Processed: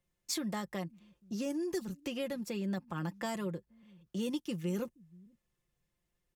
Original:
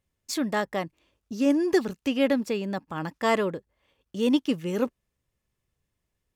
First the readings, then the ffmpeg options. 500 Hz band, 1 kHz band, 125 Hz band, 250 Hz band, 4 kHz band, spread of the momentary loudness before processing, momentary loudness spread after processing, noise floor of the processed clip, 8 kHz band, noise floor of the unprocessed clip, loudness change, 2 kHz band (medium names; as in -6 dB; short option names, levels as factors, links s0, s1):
-12.5 dB, -13.0 dB, -2.5 dB, -10.5 dB, -8.0 dB, 11 LU, 7 LU, -84 dBFS, -3.0 dB, -82 dBFS, -11.0 dB, -13.0 dB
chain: -filter_complex "[0:a]aecho=1:1:5.7:0.61,acrossover=split=190|5600[s0][s1][s2];[s0]aecho=1:1:476:0.133[s3];[s1]acompressor=threshold=0.0224:ratio=6[s4];[s3][s4][s2]amix=inputs=3:normalize=0,volume=0.631"